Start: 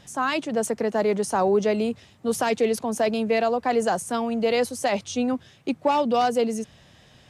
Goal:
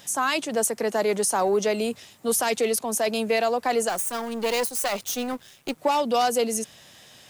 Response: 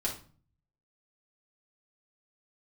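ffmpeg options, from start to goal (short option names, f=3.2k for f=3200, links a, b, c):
-filter_complex "[0:a]asettb=1/sr,asplit=3[a][b][c];[a]atrim=end=3.894[d];[b]atrim=start=3.89:end=5.78,asetpts=PTS-STARTPTS,afade=t=in:d=0.004:c=qsin,afade=t=out:st=1.886:d=0.004:c=qsin,aeval=exprs='if(lt(val(0),0),0.251*val(0),val(0))':c=same[e];[c]atrim=start=5.776[f];[d][e]acrossfade=d=0.004:c1=hsin:c2=qsin[g];[g][f]acrossfade=d=0.004:c1=qsin:c2=hsin,aemphasis=mode=production:type=bsi,asplit=2[h][i];[i]asoftclip=type=tanh:threshold=-22.5dB,volume=-9.5dB[j];[h][j]amix=inputs=2:normalize=0,alimiter=limit=-14.5dB:level=0:latency=1:release=233"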